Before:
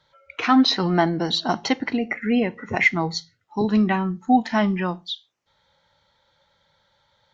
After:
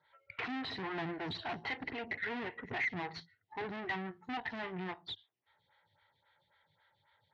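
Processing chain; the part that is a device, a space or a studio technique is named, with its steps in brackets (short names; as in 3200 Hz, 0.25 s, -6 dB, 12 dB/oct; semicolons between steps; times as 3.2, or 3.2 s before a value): 2.05–2.45 dynamic EQ 590 Hz, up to +4 dB, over -34 dBFS, Q 0.83; vibe pedal into a guitar amplifier (photocell phaser 3.7 Hz; tube stage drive 36 dB, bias 0.8; speaker cabinet 93–3700 Hz, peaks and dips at 100 Hz +8 dB, 210 Hz -10 dB, 310 Hz -3 dB, 540 Hz -9 dB, 1200 Hz -4 dB, 1900 Hz +6 dB); gain +1.5 dB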